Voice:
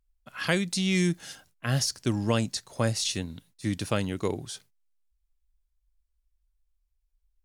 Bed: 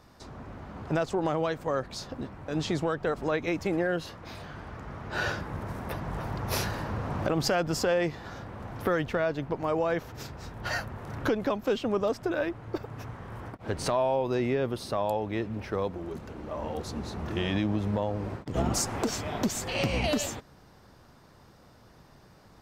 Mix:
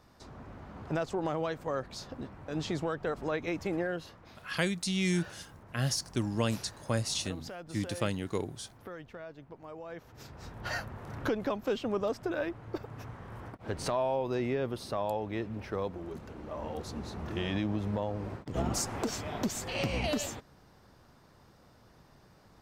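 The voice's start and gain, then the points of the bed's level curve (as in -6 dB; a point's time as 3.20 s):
4.10 s, -4.5 dB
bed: 3.81 s -4.5 dB
4.72 s -17.5 dB
9.82 s -17.5 dB
10.46 s -4 dB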